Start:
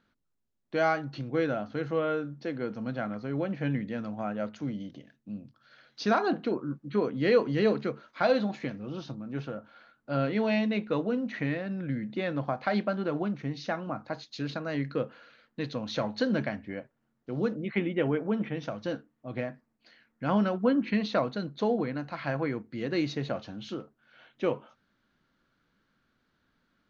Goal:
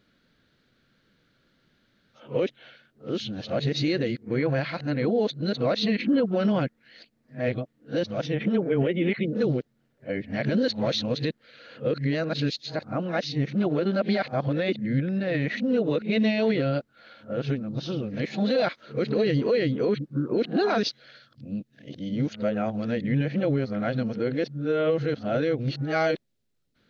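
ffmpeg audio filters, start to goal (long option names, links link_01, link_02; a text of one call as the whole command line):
ffmpeg -i in.wav -af "areverse,equalizer=frequency=125:width_type=o:width=1:gain=5,equalizer=frequency=500:width_type=o:width=1:gain=6,equalizer=frequency=1000:width_type=o:width=1:gain=-7,equalizer=frequency=2000:width_type=o:width=1:gain=3,equalizer=frequency=4000:width_type=o:width=1:gain=6,alimiter=limit=-20dB:level=0:latency=1:release=42,volume=4.5dB" out.wav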